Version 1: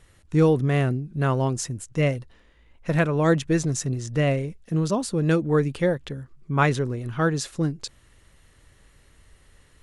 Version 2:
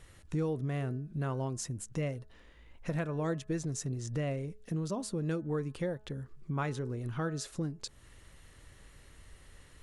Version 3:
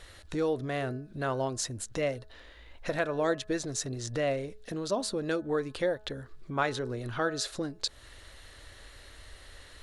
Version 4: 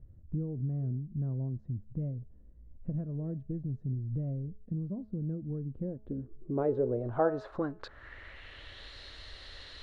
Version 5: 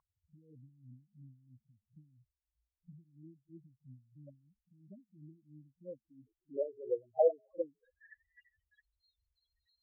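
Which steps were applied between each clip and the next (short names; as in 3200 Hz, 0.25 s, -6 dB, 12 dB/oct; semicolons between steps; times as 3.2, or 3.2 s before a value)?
compressor 2.5:1, threshold -37 dBFS, peak gain reduction 15 dB; dynamic EQ 2500 Hz, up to -3 dB, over -54 dBFS, Q 0.74; de-hum 213.4 Hz, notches 8
fifteen-band EQ 160 Hz -12 dB, 630 Hz +6 dB, 1600 Hz +5 dB, 4000 Hz +10 dB; gain +4 dB
low-pass sweep 170 Hz -> 4200 Hz, 5.68–8.95
pre-echo 40 ms -18 dB; loudest bins only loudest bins 4; wah 3 Hz 500–2100 Hz, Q 6.5; gain +7 dB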